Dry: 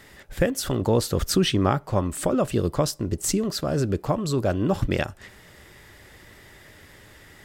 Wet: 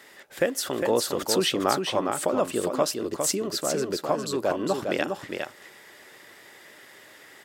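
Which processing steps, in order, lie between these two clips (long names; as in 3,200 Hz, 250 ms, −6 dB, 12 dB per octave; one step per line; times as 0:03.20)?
high-pass filter 340 Hz 12 dB per octave
single-tap delay 407 ms −5 dB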